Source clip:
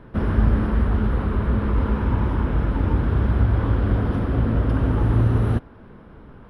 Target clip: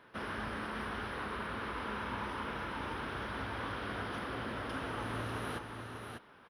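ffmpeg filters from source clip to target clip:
ffmpeg -i in.wav -af "lowpass=frequency=3000:poles=1,aderivative,aecho=1:1:595:0.531,volume=9.5dB" out.wav

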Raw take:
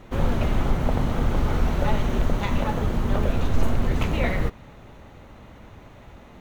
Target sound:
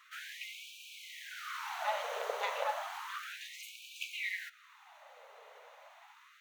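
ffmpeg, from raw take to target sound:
ffmpeg -i in.wav -af "afftfilt=real='re*gte(b*sr/1024,410*pow(2300/410,0.5+0.5*sin(2*PI*0.32*pts/sr)))':imag='im*gte(b*sr/1024,410*pow(2300/410,0.5+0.5*sin(2*PI*0.32*pts/sr)))':win_size=1024:overlap=0.75,volume=-4.5dB" out.wav

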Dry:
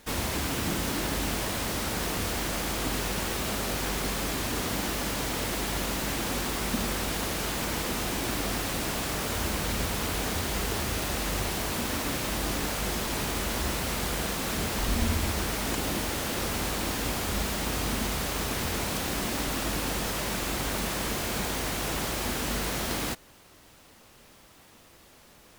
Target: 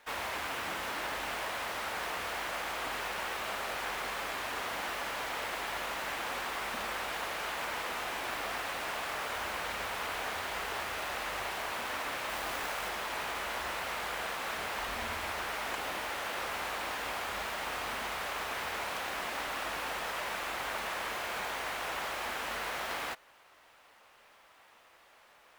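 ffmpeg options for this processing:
ffmpeg -i in.wav -filter_complex "[0:a]acrossover=split=560 3000:gain=0.0891 1 0.224[link_01][link_02][link_03];[link_01][link_02][link_03]amix=inputs=3:normalize=0,asettb=1/sr,asplit=3[link_04][link_05][link_06];[link_04]atrim=end=12.294[link_07];[link_05]atrim=start=12.29:end=12.89,asetpts=PTS-STARTPTS,afade=type=in:duration=0.004:curve=qsin,afade=type=out:start_time=0.596:duration=0.004:curve=qsin,acrusher=bits=2:mode=log:mix=0:aa=0.000001[link_08];[link_06]atrim=start=12.886[link_09];[link_07][link_08]acrossfade=duration=0.004:curve1=hsin:curve2=qsin[link_10];[link_10][link_09]acrossfade=duration=0.004:curve1=qsin:curve2=hsin" out.wav

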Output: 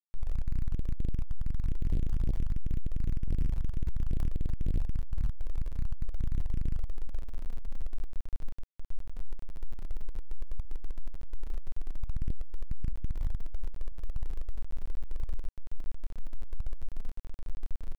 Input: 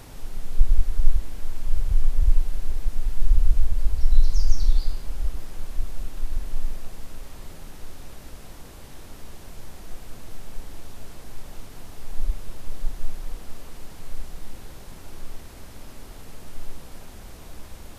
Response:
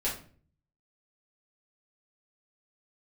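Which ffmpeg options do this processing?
-af "aeval=exprs='val(0)+0.5*0.106*sgn(val(0))':channel_layout=same,bandreject=frequency=380:width=12,bandreject=frequency=128.1:width_type=h:width=4,bandreject=frequency=256.2:width_type=h:width=4,bandreject=frequency=384.3:width_type=h:width=4,bandreject=frequency=512.4:width_type=h:width=4,bandreject=frequency=640.5:width_type=h:width=4,bandreject=frequency=768.6:width_type=h:width=4,bandreject=frequency=896.7:width_type=h:width=4,bandreject=frequency=1024.8:width_type=h:width=4,bandreject=frequency=1152.9:width_type=h:width=4,bandreject=frequency=1281:width_type=h:width=4,bandreject=frequency=1409.1:width_type=h:width=4,bandreject=frequency=1537.2:width_type=h:width=4,bandreject=frequency=1665.3:width_type=h:width=4,bandreject=frequency=1793.4:width_type=h:width=4,bandreject=frequency=1921.5:width_type=h:width=4,bandreject=frequency=2049.6:width_type=h:width=4,bandreject=frequency=2177.7:width_type=h:width=4,bandreject=frequency=2305.8:width_type=h:width=4,bandreject=frequency=2433.9:width_type=h:width=4,afftfilt=real='re*gte(hypot(re,im),1.12)':imag='im*gte(hypot(re,im),1.12)':win_size=1024:overlap=0.75,adynamicequalizer=threshold=0.001:dfrequency=470:dqfactor=3:tfrequency=470:tqfactor=3:attack=5:release=100:ratio=0.375:range=2:mode=boostabove:tftype=bell,alimiter=limit=-12dB:level=0:latency=1:release=29,asetrate=33038,aresample=44100,atempo=1.33484,flanger=delay=4.3:depth=6.6:regen=-51:speed=1.8:shape=triangular,aeval=exprs='(tanh(56.2*val(0)+0.35)-tanh(0.35))/56.2':channel_layout=same,aeval=exprs='val(0)*gte(abs(val(0)),0.00316)':channel_layout=same,volume=11dB"

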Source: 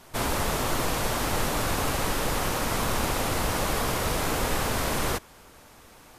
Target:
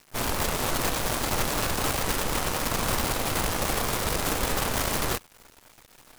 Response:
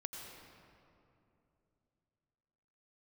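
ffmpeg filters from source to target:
-af "acrusher=bits=5:dc=4:mix=0:aa=0.000001,volume=-1dB"

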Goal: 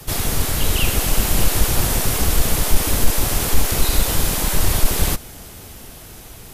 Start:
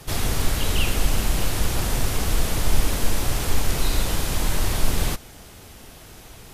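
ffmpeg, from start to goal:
ffmpeg -i in.wav -filter_complex "[0:a]acrossover=split=300|860|2300[link_01][link_02][link_03][link_04];[link_01]aeval=exprs='clip(val(0),-1,0.0355)':channel_layout=same[link_05];[link_05][link_02][link_03][link_04]amix=inputs=4:normalize=0,acontrast=25,highshelf=frequency=9700:gain=10,dynaudnorm=framelen=220:gausssize=9:maxgain=11.5dB,lowshelf=frequency=480:gain=2.5,volume=-3dB" out.wav

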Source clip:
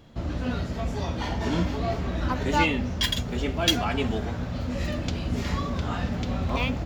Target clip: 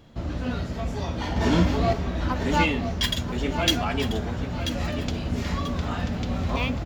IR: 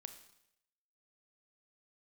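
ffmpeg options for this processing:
-filter_complex "[0:a]asettb=1/sr,asplit=3[link_01][link_02][link_03];[link_01]atrim=end=1.364[link_04];[link_02]atrim=start=1.36:end=1.93,asetpts=PTS-STARTPTS,afade=type=in:duration=0.004:curve=qsin,afade=type=out:start_time=0.566:duration=0.004:curve=qsin,acontrast=30[link_05];[link_03]atrim=start=1.926[link_06];[link_04][link_05]acrossfade=duration=0.004:curve1=hsin:curve2=qsin[link_07];[link_07][link_06]acrossfade=duration=0.004:curve1=qsin:curve2=hsin,asplit=2[link_08][link_09];[link_09]aecho=0:1:987|1974|2961:0.316|0.098|0.0304[link_10];[link_08][link_10]amix=inputs=2:normalize=0"

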